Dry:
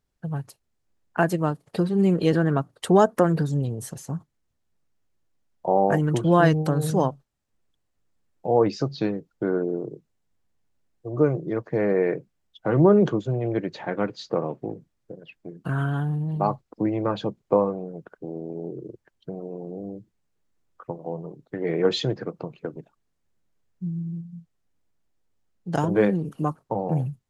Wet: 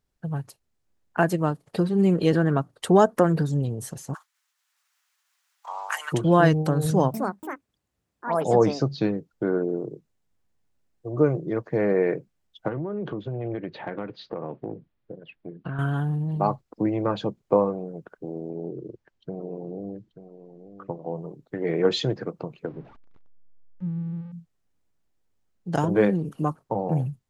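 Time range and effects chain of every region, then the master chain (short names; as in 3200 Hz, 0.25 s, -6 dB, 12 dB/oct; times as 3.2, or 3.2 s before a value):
4.13–6.12 spectral limiter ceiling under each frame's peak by 23 dB + HPF 1100 Hz 24 dB/oct + dynamic EQ 1600 Hz, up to -4 dB, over -38 dBFS, Q 1
6.85–9.31 echoes that change speed 0.289 s, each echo +6 st, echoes 2, each echo -6 dB + HPF 61 Hz + low shelf 150 Hz +5 dB
12.68–15.79 LPF 3800 Hz 24 dB/oct + compressor 16:1, threshold -26 dBFS
18.5–21.15 LPF 5700 Hz + echo 0.885 s -12 dB
22.66–24.32 zero-crossing step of -41.5 dBFS + tape spacing loss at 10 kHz 43 dB
whole clip: dry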